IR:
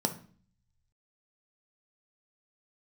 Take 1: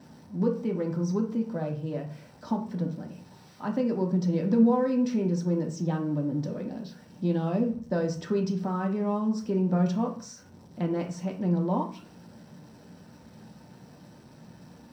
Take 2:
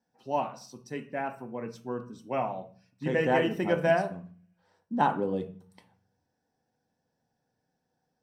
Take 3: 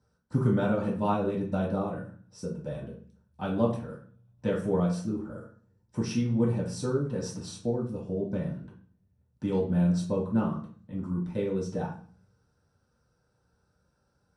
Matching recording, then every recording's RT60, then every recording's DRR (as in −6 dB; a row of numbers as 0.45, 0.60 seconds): 2; 0.45, 0.45, 0.45 seconds; 1.5, 6.0, −7.0 decibels